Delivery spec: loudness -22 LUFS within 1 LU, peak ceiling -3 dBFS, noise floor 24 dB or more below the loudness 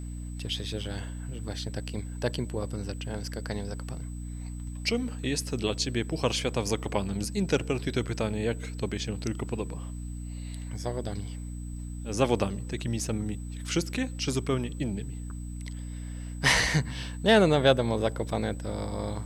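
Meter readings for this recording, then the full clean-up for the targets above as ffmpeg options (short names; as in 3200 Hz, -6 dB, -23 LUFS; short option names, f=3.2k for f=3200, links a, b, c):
hum 60 Hz; harmonics up to 300 Hz; hum level -34 dBFS; steady tone 8000 Hz; tone level -52 dBFS; loudness -30.5 LUFS; peak -6.5 dBFS; loudness target -22.0 LUFS
-> -af "bandreject=f=60:t=h:w=4,bandreject=f=120:t=h:w=4,bandreject=f=180:t=h:w=4,bandreject=f=240:t=h:w=4,bandreject=f=300:t=h:w=4"
-af "bandreject=f=8k:w=30"
-af "volume=8.5dB,alimiter=limit=-3dB:level=0:latency=1"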